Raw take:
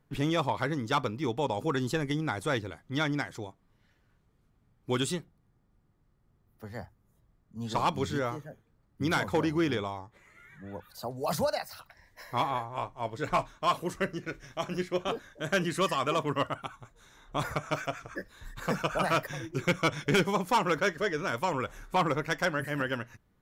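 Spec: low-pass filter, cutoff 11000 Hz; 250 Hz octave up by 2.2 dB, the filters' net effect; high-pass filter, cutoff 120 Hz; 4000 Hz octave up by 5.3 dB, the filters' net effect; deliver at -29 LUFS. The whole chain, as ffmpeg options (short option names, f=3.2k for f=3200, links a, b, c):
-af "highpass=120,lowpass=11k,equalizer=f=250:t=o:g=3.5,equalizer=f=4k:t=o:g=7,volume=0.5dB"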